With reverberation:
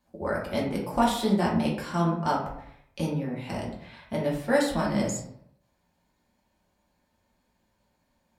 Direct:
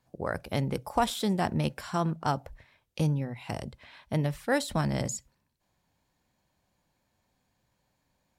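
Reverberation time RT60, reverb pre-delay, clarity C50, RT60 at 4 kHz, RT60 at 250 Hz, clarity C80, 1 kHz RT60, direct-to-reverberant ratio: 0.70 s, 3 ms, 4.5 dB, 0.40 s, 0.75 s, 8.5 dB, 0.70 s, -4.5 dB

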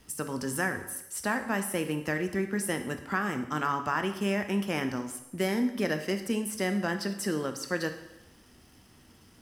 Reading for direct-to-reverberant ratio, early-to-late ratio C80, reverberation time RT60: 7.0 dB, 12.5 dB, 0.85 s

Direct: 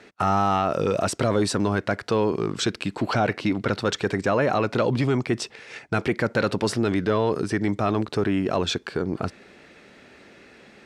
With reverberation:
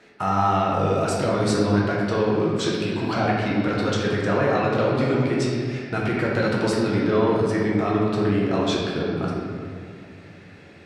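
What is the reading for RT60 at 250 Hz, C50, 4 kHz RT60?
3.0 s, -0.5 dB, 1.5 s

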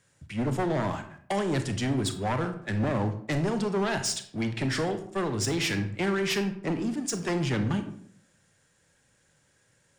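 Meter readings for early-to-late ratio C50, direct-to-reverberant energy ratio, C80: 10.5 dB, 8.0 dB, 13.5 dB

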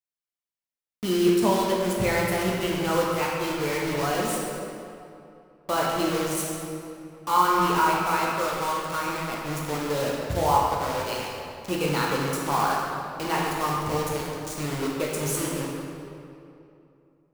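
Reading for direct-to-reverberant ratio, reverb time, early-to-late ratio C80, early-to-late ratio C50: -4.0 dB, 2.7 s, 1.0 dB, -0.5 dB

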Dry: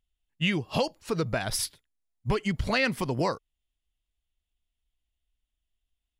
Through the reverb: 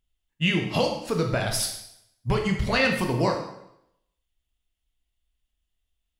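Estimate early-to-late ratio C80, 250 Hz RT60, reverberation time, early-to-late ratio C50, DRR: 9.0 dB, 0.75 s, 0.80 s, 6.0 dB, 2.0 dB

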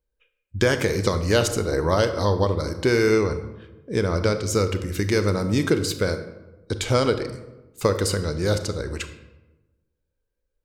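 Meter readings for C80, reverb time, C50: 12.5 dB, 1.1 s, 11.0 dB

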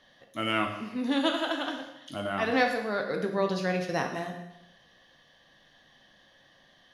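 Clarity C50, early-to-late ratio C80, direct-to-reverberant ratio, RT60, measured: 6.5 dB, 9.0 dB, 3.0 dB, 0.90 s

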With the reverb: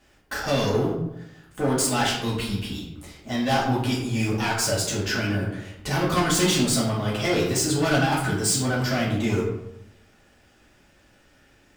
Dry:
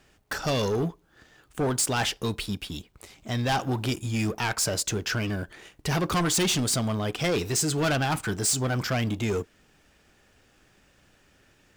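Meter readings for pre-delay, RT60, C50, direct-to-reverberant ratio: 3 ms, 0.85 s, 3.5 dB, -6.5 dB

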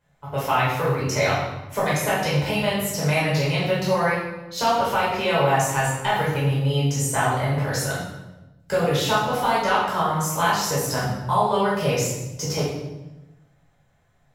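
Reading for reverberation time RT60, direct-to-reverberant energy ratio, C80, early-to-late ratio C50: 1.0 s, -8.0 dB, 4.0 dB, 1.0 dB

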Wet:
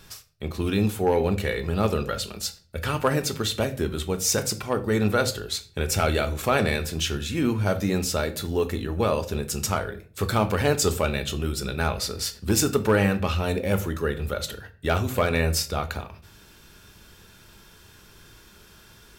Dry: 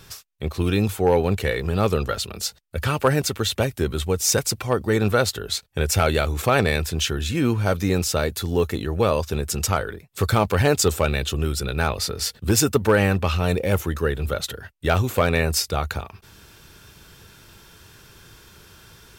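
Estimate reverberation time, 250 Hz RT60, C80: 0.45 s, 0.60 s, 19.5 dB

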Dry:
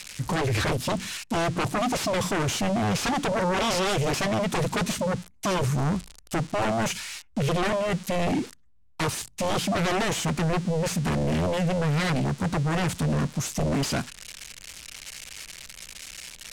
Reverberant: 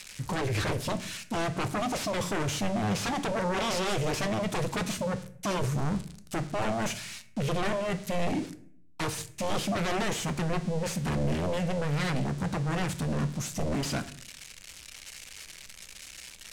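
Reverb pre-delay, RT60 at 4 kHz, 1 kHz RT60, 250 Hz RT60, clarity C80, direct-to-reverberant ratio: 7 ms, 0.40 s, 0.50 s, 0.80 s, 18.5 dB, 10.0 dB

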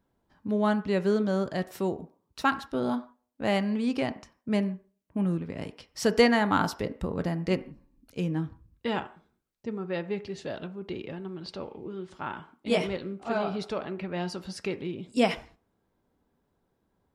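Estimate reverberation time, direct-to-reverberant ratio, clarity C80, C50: no single decay rate, 10.0 dB, 20.0 dB, 16.5 dB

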